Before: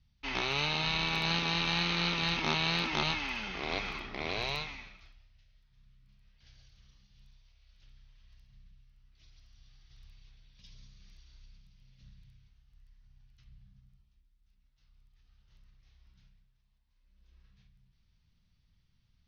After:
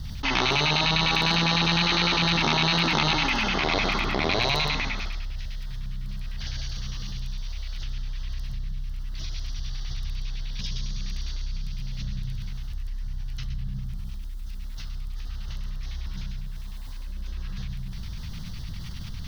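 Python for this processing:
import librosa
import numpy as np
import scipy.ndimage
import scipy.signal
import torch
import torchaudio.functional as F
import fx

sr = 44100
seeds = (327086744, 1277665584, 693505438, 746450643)

y = x + 10.0 ** (-6.5 / 20.0) * np.pad(x, (int(119 * sr / 1000.0), 0))[:len(x)]
y = fx.filter_lfo_notch(y, sr, shape='square', hz=9.9, low_hz=440.0, high_hz=2400.0, q=0.92)
y = fx.env_flatten(y, sr, amount_pct=70)
y = y * 10.0 ** (7.5 / 20.0)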